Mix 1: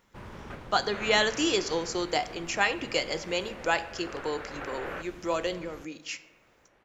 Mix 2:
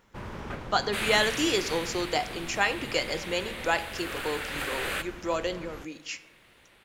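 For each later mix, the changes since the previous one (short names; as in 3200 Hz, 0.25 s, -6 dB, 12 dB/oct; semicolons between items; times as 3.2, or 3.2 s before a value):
first sound +5.0 dB; second sound: remove LPF 1200 Hz 12 dB/oct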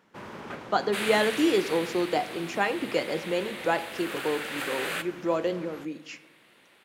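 speech: add tilt -3.5 dB/oct; master: add HPF 190 Hz 12 dB/oct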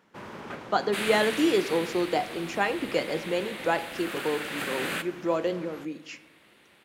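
second sound: remove HPF 350 Hz 24 dB/oct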